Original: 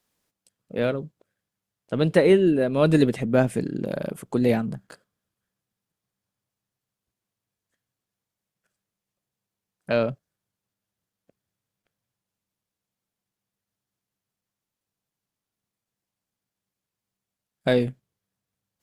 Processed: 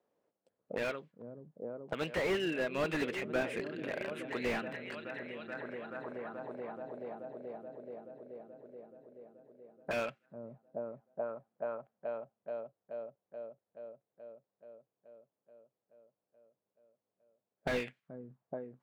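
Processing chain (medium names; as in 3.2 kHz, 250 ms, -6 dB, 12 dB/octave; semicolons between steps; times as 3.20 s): treble shelf 4.9 kHz -5.5 dB; delay with an opening low-pass 429 ms, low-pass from 200 Hz, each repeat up 1 oct, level -6 dB; auto-wah 510–2400 Hz, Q 2, up, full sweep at -26 dBFS; slew-rate limiter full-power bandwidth 14 Hz; trim +7 dB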